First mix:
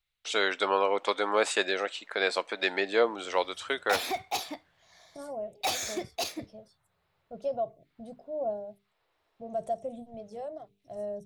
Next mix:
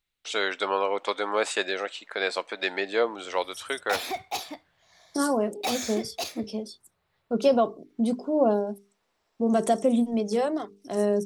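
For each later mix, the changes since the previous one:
second voice: remove EQ curve 140 Hz 0 dB, 220 Hz -22 dB, 420 Hz -21 dB, 650 Hz -5 dB, 980 Hz -22 dB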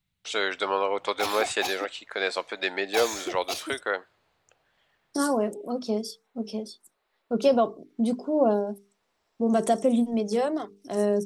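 background: entry -2.70 s

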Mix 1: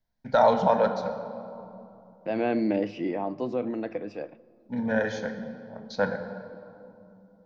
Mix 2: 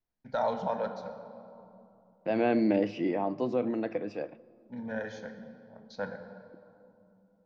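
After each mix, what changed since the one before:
first voice -10.0 dB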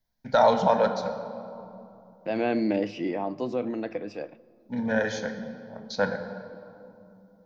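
first voice +10.0 dB; master: add high shelf 4000 Hz +9 dB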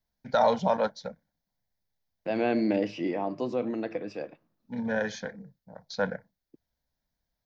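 reverb: off

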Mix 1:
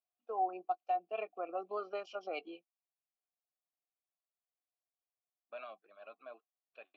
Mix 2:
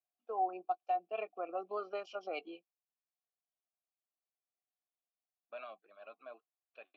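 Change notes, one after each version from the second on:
none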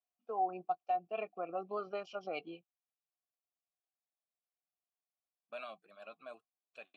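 second voice: remove air absorption 290 m; master: remove HPF 280 Hz 24 dB/oct

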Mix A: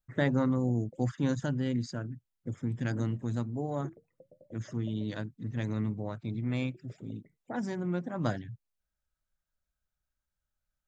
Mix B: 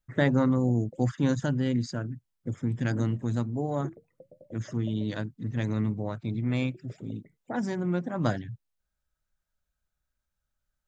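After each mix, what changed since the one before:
speech +4.0 dB; background +5.0 dB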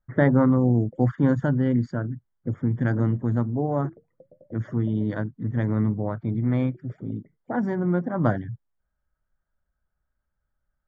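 speech +5.0 dB; master: add polynomial smoothing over 41 samples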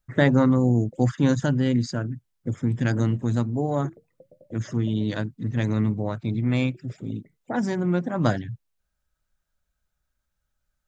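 master: remove polynomial smoothing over 41 samples

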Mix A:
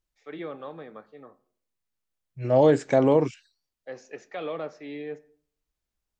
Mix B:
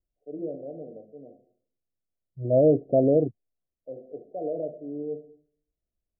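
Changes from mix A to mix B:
first voice: send +11.0 dB; master: add Chebyshev low-pass 730 Hz, order 10

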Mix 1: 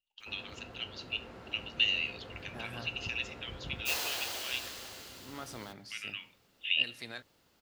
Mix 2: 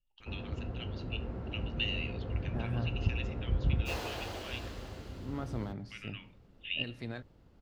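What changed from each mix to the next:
master: add tilt -4.5 dB/oct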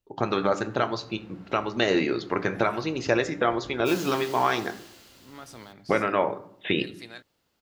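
first voice: remove ladder high-pass 2700 Hz, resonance 85%; background -4.5 dB; master: add tilt +4.5 dB/oct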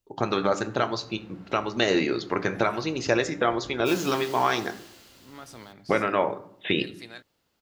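first voice: add tone controls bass 0 dB, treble +5 dB

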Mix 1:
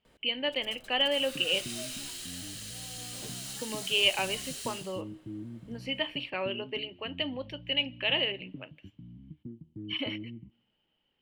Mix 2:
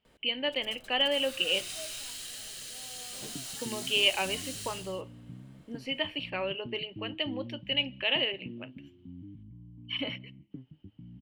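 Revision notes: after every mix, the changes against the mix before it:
second sound: entry +2.00 s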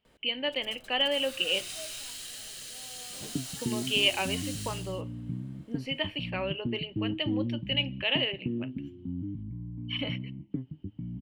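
second sound +10.5 dB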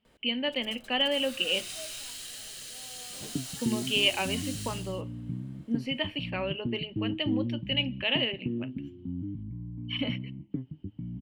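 speech: add bell 230 Hz +13.5 dB 0.31 oct

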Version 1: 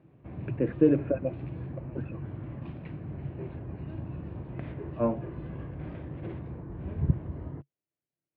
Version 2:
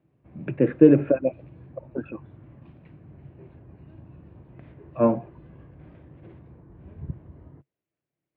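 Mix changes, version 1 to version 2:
speech +7.5 dB; background -9.0 dB

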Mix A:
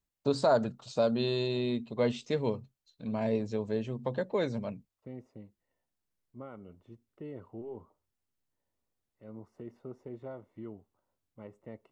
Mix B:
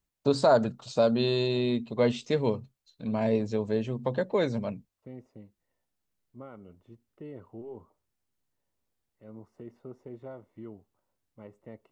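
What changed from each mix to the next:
first voice +4.0 dB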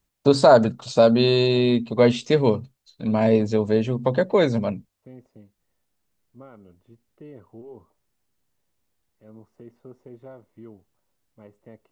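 first voice +8.0 dB

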